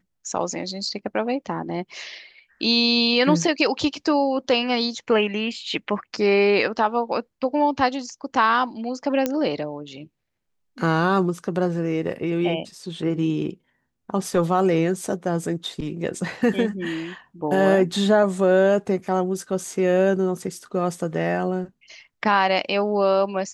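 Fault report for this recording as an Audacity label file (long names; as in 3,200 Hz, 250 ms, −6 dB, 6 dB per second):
9.260000	9.260000	click −8 dBFS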